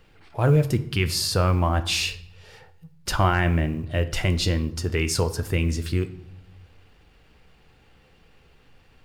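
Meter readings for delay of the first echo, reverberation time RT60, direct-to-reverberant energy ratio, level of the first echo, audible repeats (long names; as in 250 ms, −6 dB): no echo audible, 0.75 s, 10.0 dB, no echo audible, no echo audible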